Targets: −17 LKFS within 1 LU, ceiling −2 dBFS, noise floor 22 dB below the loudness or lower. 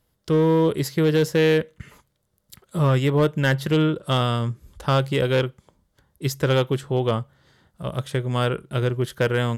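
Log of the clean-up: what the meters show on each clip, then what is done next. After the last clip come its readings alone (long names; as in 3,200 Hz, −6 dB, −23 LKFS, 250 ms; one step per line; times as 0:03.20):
share of clipped samples 1.4%; peaks flattened at −13.0 dBFS; integrated loudness −22.5 LKFS; sample peak −13.0 dBFS; target loudness −17.0 LKFS
→ clipped peaks rebuilt −13 dBFS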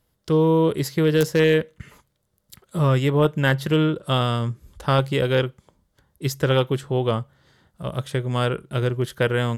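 share of clipped samples 0.0%; integrated loudness −22.0 LKFS; sample peak −4.0 dBFS; target loudness −17.0 LKFS
→ level +5 dB
brickwall limiter −2 dBFS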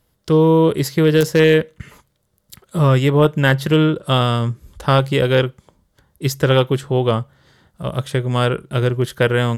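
integrated loudness −17.0 LKFS; sample peak −2.0 dBFS; background noise floor −66 dBFS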